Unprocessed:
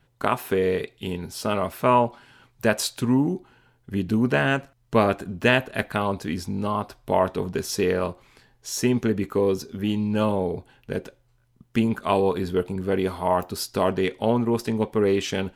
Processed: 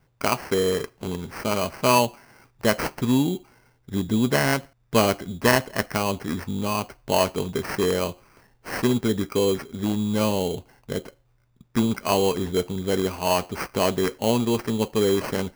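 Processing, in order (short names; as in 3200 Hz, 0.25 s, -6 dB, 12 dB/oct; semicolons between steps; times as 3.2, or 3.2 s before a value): sample-rate reducer 3600 Hz, jitter 0%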